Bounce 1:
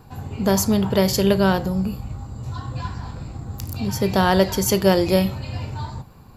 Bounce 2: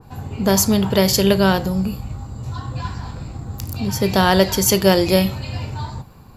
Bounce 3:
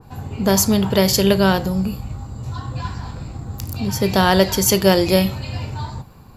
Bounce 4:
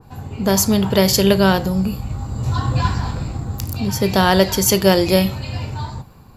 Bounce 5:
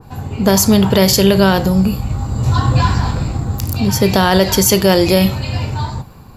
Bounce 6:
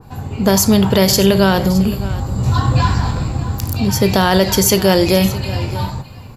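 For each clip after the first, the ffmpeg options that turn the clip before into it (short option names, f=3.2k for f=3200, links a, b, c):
-af "adynamicequalizer=threshold=0.0178:dfrequency=1800:dqfactor=0.7:tfrequency=1800:tqfactor=0.7:attack=5:release=100:ratio=0.375:range=2:mode=boostabove:tftype=highshelf,volume=2dB"
-af anull
-af "dynaudnorm=f=190:g=7:m=12.5dB,volume=-1dB"
-af "alimiter=level_in=7dB:limit=-1dB:release=50:level=0:latency=1,volume=-1dB"
-af "aecho=1:1:617:0.158,volume=-1dB"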